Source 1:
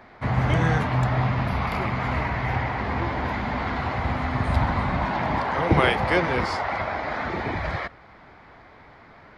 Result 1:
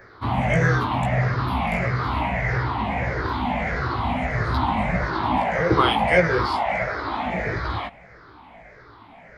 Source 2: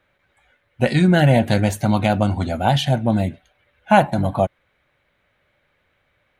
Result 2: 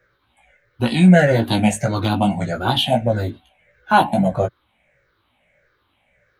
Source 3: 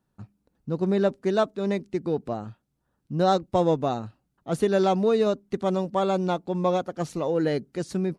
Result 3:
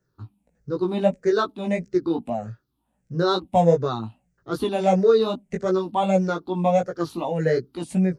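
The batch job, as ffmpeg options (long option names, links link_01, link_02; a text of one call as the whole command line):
ffmpeg -i in.wav -filter_complex "[0:a]afftfilt=real='re*pow(10,15/40*sin(2*PI*(0.55*log(max(b,1)*sr/1024/100)/log(2)-(-1.6)*(pts-256)/sr)))':imag='im*pow(10,15/40*sin(2*PI*(0.55*log(max(b,1)*sr/1024/100)/log(2)-(-1.6)*(pts-256)/sr)))':win_size=1024:overlap=0.75,flanger=delay=16:depth=2.3:speed=2.6,acrossover=split=160|3000[link_01][link_02][link_03];[link_01]acompressor=threshold=-26dB:ratio=8[link_04];[link_04][link_02][link_03]amix=inputs=3:normalize=0,volume=2.5dB" out.wav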